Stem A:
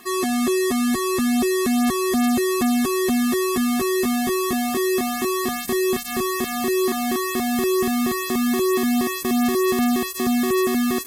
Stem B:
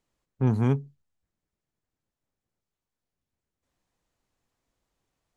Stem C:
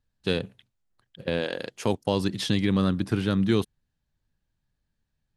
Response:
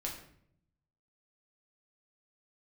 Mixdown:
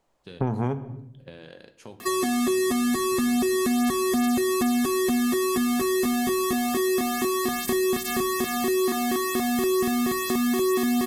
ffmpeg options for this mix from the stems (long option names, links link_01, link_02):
-filter_complex "[0:a]adelay=2000,volume=3dB,asplit=2[link_01][link_02];[link_02]volume=-10.5dB[link_03];[1:a]equalizer=frequency=720:width_type=o:width=1.5:gain=11.5,volume=2dB,asplit=2[link_04][link_05];[link_05]volume=-8.5dB[link_06];[2:a]acompressor=threshold=-25dB:ratio=4,volume=-17.5dB,asplit=2[link_07][link_08];[link_08]volume=-3dB[link_09];[3:a]atrim=start_sample=2205[link_10];[link_03][link_06][link_09]amix=inputs=3:normalize=0[link_11];[link_11][link_10]afir=irnorm=-1:irlink=0[link_12];[link_01][link_04][link_07][link_12]amix=inputs=4:normalize=0,acompressor=threshold=-22dB:ratio=6"